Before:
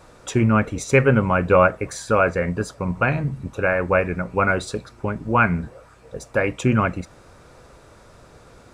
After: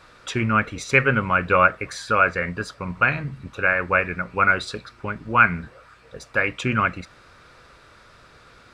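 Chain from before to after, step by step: band shelf 2400 Hz +10 dB 2.4 oct; gain -6 dB

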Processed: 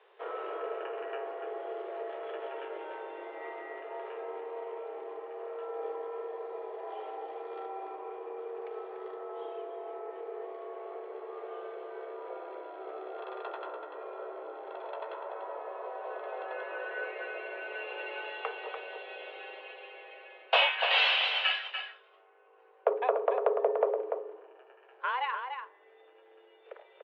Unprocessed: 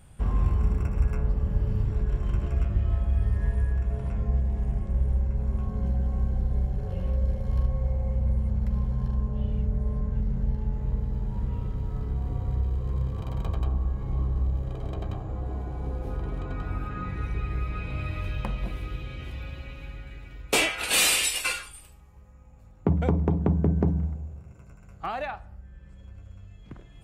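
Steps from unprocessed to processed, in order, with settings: mistuned SSB +250 Hz 200–3200 Hz; outdoor echo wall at 50 m, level -6 dB

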